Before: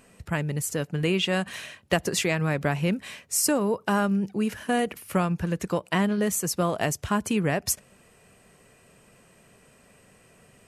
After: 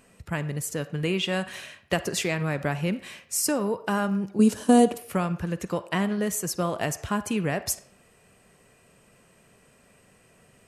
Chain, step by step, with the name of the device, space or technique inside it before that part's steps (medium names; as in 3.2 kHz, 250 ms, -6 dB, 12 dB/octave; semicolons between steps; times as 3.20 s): 4.39–4.98 s: graphic EQ 250/500/1000/2000/4000/8000 Hz +11/+6/+5/-9/+6/+12 dB; filtered reverb send (on a send: high-pass 490 Hz 12 dB/octave + low-pass 6.4 kHz 12 dB/octave + reverberation RT60 0.70 s, pre-delay 38 ms, DRR 13 dB); on the sum: trim -2 dB